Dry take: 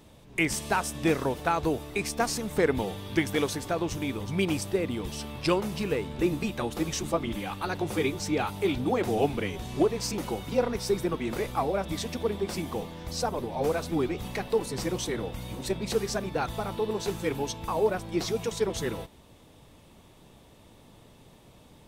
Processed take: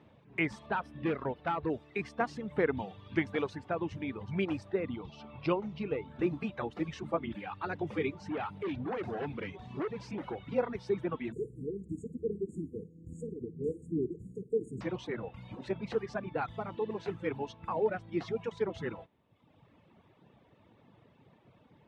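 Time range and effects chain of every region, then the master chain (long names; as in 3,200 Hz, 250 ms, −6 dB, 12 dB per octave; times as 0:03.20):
0:00.66–0:01.70: parametric band 7,200 Hz −14.5 dB 0.7 octaves + hard clipping −22 dBFS
0:04.96–0:06.08: low-pass filter 6,100 Hz 24 dB per octave + parametric band 1,700 Hz −12 dB 0.3 octaves
0:08.13–0:10.39: hard clipping −27 dBFS + single-tap delay 202 ms −18 dB
0:11.32–0:14.81: linear-phase brick-wall band-stop 490–6,600 Hz + parametric band 8,500 Hz +11 dB + flutter between parallel walls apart 9.3 metres, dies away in 0.33 s
whole clip: Chebyshev band-pass filter 110–2,100 Hz, order 2; reverb reduction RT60 1.1 s; level −3.5 dB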